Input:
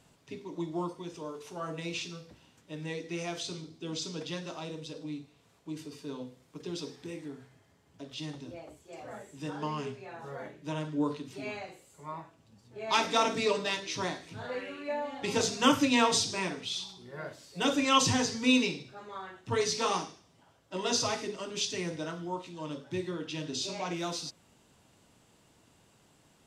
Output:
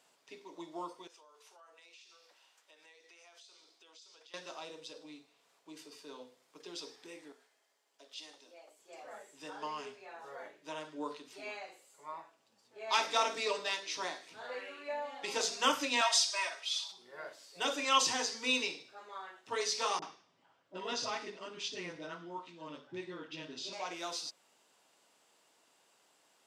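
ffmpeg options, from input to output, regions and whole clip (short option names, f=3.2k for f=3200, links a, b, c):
-filter_complex "[0:a]asettb=1/sr,asplit=3[a][b][c];[a]atrim=end=1.074[d];[b]atrim=start=1.07:end=4.34,asetpts=PTS-STARTPTS,afade=t=in:d=0.004:c=qsin,afade=t=out:st=3.266:d=0.004:c=qsin,highpass=630,acompressor=threshold=-54dB:ratio=6:attack=3.2:release=140:knee=1:detection=peak[e];[c]atrim=start=4.336[f];[d][e]acrossfade=d=0.004:c1=hsin:c2=qsin[g];[g][f]acrossfade=d=0.004:c1=qsin:c2=hsin,asettb=1/sr,asplit=3[h][i][j];[h]atrim=end=7.324[k];[i]atrim=start=7.32:end=8.79,asetpts=PTS-STARTPTS,afade=t=in:d=0.004:c=qsin,afade=t=out:st=1.466:d=0.004:c=qsin,highpass=460,equalizer=f=1.2k:w=0.49:g=-5.5[l];[j]atrim=start=8.786[m];[k][l]acrossfade=d=0.004:c1=hsin:c2=qsin[n];[n][m]acrossfade=d=0.004:c1=qsin:c2=hsin,asettb=1/sr,asplit=3[o][p][q];[o]atrim=end=16.014[r];[p]atrim=start=16.01:end=16.92,asetpts=PTS-STARTPTS,afade=t=in:d=0.004:c=qsin,afade=t=out:st=0.906:d=0.004:c=qsin,highpass=f=590:w=0.5412,highpass=f=590:w=1.3066,bandreject=f=900:w=12,aecho=1:1:3.2:0.89,atrim=end_sample=40131[s];[q]atrim=start=16.916[t];[r][s]acrossfade=d=0.004:c1=hsin:c2=qsin[u];[u][t]acrossfade=d=0.004:c1=qsin:c2=hsin,asettb=1/sr,asplit=3[v][w][x];[v]atrim=end=19.994[y];[w]atrim=start=19.99:end=23.73,asetpts=PTS-STARTPTS,afade=t=in:d=0.004:c=qsin,afade=t=out:st=3.736:d=0.004:c=qsin,lowpass=8k,bass=f=250:g=11,treble=f=4k:g=-9,acrossover=split=610[z][aa];[aa]adelay=30[ab];[z][ab]amix=inputs=2:normalize=0,atrim=end_sample=164934[ac];[x]atrim=start=23.726[ad];[y][ac]acrossfade=d=0.004:c1=hsin:c2=qsin[ae];[ae][ad]acrossfade=d=0.004:c1=qsin:c2=hsin,highpass=520,equalizer=f=4.9k:w=5.6:g=2.5,volume=-3dB"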